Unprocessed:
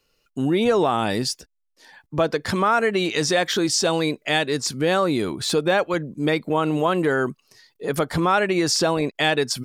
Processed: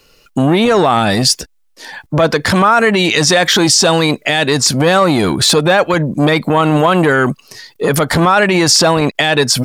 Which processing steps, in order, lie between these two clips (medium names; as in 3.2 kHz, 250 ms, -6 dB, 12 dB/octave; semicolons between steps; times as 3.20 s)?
dynamic bell 380 Hz, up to -5 dB, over -32 dBFS, Q 1.4; loudness maximiser +18 dB; transformer saturation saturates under 400 Hz